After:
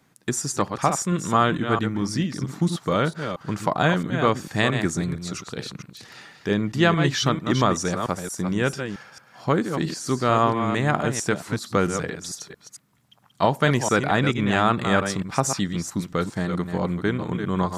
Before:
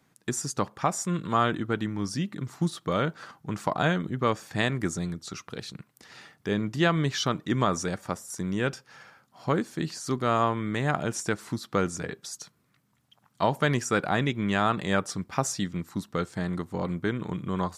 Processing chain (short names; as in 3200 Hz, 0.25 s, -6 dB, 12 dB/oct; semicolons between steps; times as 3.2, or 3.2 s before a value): reverse delay 0.224 s, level -7.5 dB; gain +4.5 dB